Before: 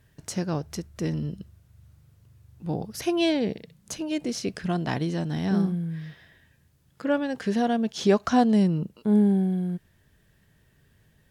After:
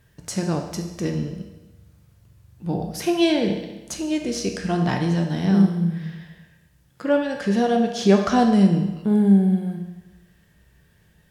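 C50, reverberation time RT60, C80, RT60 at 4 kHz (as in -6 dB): 6.0 dB, 1.1 s, 8.5 dB, 1.0 s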